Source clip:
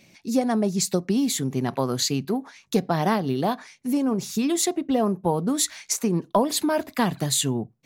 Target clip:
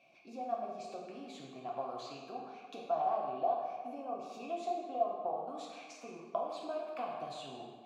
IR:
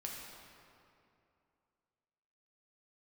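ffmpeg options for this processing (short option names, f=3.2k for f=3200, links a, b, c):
-filter_complex "[0:a]acrossover=split=7600[a][b];[b]acompressor=threshold=-40dB:ratio=4:attack=1:release=60[c];[a][c]amix=inputs=2:normalize=0,asettb=1/sr,asplit=3[d][e][f];[d]atrim=end=2.934[g];[e]atrim=start=2.93:end=5.36,asetpts=PTS-STARTPTS,afade=t=in:d=0.004:c=qsin,afade=t=out:st=2.426:d=0.004:c=qsin,equalizer=f=650:w=1.1:g=7.5[h];[f]atrim=start=5.356[i];[g][h]acrossfade=d=0.004:c1=hsin:c2=qsin[j];[j][i]acrossfade=d=0.004:c1=qsin:c2=hsin,acompressor=threshold=-30dB:ratio=6,asplit=3[k][l][m];[k]bandpass=f=730:t=q:w=8,volume=0dB[n];[l]bandpass=f=1.09k:t=q:w=8,volume=-6dB[o];[m]bandpass=f=2.44k:t=q:w=8,volume=-9dB[p];[n][o][p]amix=inputs=3:normalize=0[q];[1:a]atrim=start_sample=2205,asetrate=79380,aresample=44100[r];[q][r]afir=irnorm=-1:irlink=0,volume=12dB"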